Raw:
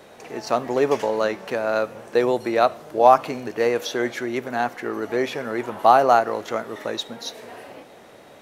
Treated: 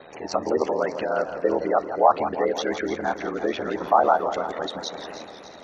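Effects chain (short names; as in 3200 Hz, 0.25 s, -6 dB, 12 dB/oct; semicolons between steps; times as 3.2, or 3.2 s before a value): spectral gate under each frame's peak -20 dB strong; low shelf 300 Hz -3 dB; in parallel at +1.5 dB: compressor 6:1, threshold -34 dBFS, peak gain reduction 23 dB; on the sum: time stretch by phase-locked vocoder 0.67×; ring modulator 40 Hz; on a send: thin delay 0.299 s, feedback 65%, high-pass 4300 Hz, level -10 dB; on the sum: warbling echo 0.167 s, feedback 65%, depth 143 cents, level -11 dB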